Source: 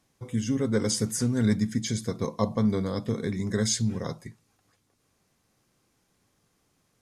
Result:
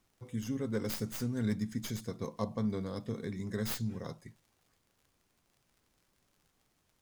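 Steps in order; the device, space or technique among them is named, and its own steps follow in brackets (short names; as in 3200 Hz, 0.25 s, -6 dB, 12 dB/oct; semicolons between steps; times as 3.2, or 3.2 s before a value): record under a worn stylus (tracing distortion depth 0.15 ms; crackle 77/s -47 dBFS; pink noise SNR 39 dB); gain -9 dB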